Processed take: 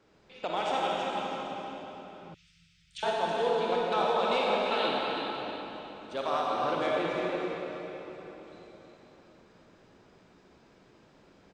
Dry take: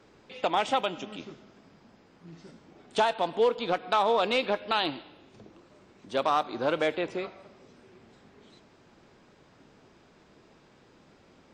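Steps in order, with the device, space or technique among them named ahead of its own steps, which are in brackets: cave (echo 0.323 s -8.5 dB; reverb RT60 3.9 s, pre-delay 37 ms, DRR -4 dB); 2.34–3.03 inverse Chebyshev band-stop 280–880 Hz, stop band 60 dB; gain -7.5 dB

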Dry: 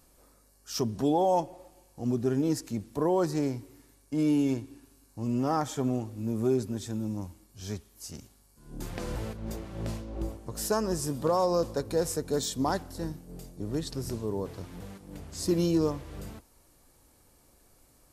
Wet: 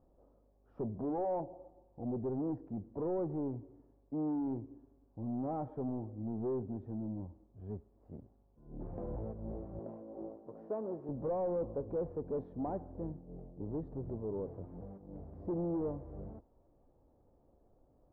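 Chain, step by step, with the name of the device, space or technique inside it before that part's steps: overdriven synthesiser ladder filter (soft clip -28.5 dBFS, distortion -9 dB; ladder low-pass 860 Hz, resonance 30%); 9.79–11.09 HPF 260 Hz 12 dB/oct; gain +2 dB

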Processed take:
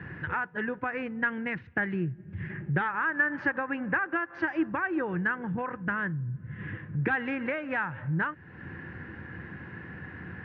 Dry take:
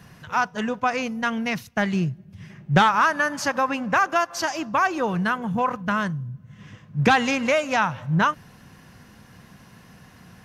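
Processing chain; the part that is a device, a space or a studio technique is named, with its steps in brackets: bass amplifier (compressor 3:1, threshold -38 dBFS, peak gain reduction 18.5 dB; speaker cabinet 79–2200 Hz, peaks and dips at 81 Hz +8 dB, 220 Hz -5 dB, 330 Hz +9 dB, 670 Hz -9 dB, 1100 Hz -6 dB, 1700 Hz +9 dB); gain +6 dB

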